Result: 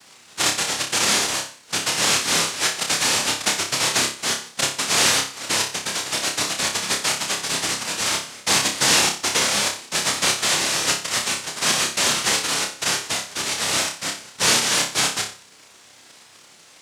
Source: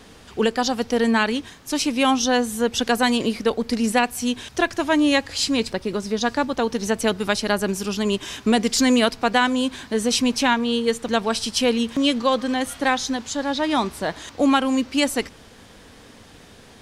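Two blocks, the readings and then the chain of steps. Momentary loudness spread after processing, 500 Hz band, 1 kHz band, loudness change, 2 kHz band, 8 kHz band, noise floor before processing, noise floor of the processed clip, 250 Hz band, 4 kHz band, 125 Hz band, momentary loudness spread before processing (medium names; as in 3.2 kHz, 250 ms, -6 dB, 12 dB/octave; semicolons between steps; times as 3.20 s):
7 LU, -8.5 dB, -3.0 dB, +1.5 dB, +2.5 dB, +10.5 dB, -47 dBFS, -49 dBFS, -14.0 dB, +6.0 dB, -0.5 dB, 7 LU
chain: low-pass 1.8 kHz 6 dB/octave; noise-vocoded speech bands 1; word length cut 12-bit, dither triangular; on a send: flutter echo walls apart 5.1 m, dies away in 0.38 s; on the sum: trim -2 dB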